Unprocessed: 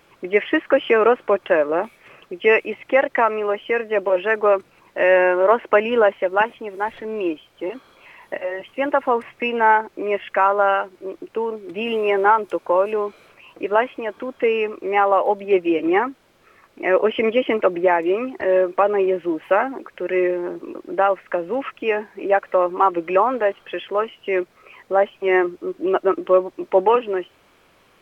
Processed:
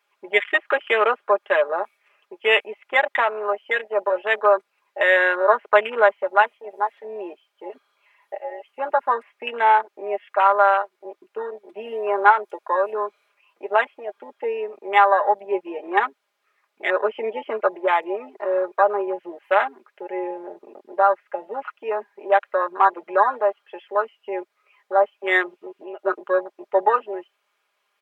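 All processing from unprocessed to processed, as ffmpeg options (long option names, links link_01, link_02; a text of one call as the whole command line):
ffmpeg -i in.wav -filter_complex "[0:a]asettb=1/sr,asplit=3[link_01][link_02][link_03];[link_01]atrim=end=25.494[link_04];[link_02]atrim=start=25.49:end=25.99,asetpts=PTS-STARTPTS,afade=type=in:duration=0.004:curve=qsin,afade=type=out:start_time=0.496:duration=0.004:curve=qsin,equalizer=frequency=2700:width_type=o:width=0.6:gain=8.5,acompressor=threshold=-23dB:ratio=12:attack=3.2:release=140:knee=1:detection=peak[link_05];[link_03]atrim=start=25.986[link_06];[link_04][link_05]acrossfade=duration=0.004:curve1=hsin:curve2=qsin[link_07];[link_07][link_06]acrossfade=duration=0.004:curve1=qsin:curve2=hsin,afwtdn=0.0708,highpass=750,aecho=1:1:4.9:0.65,volume=1dB" out.wav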